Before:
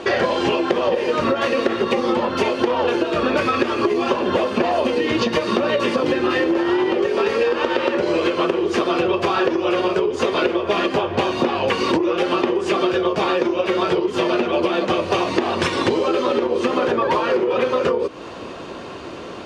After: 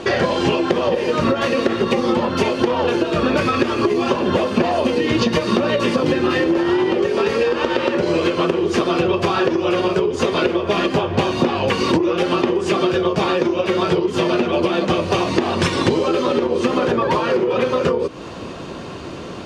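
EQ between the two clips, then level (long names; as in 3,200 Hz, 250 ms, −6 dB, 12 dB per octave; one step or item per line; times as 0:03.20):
bass and treble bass +7 dB, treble +4 dB
parametric band 160 Hz +3.5 dB 0.38 octaves
0.0 dB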